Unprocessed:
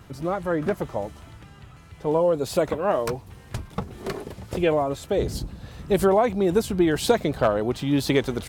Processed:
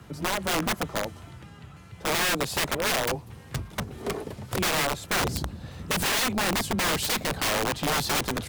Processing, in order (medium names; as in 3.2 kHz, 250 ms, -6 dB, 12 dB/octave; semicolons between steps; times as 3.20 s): frequency shift +18 Hz; integer overflow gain 20 dB